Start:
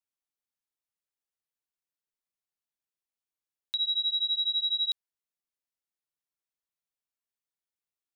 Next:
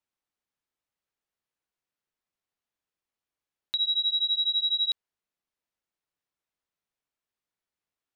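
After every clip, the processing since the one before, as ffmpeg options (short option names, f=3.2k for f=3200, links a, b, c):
-af "lowpass=f=2.7k:p=1,volume=7dB"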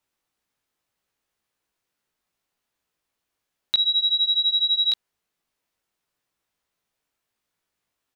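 -filter_complex "[0:a]asplit=2[a][b];[b]adelay=18,volume=-5dB[c];[a][c]amix=inputs=2:normalize=0,volume=8.5dB"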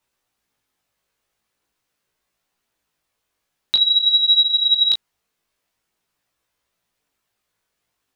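-af "flanger=delay=16:depth=3.9:speed=0.46,volume=8dB"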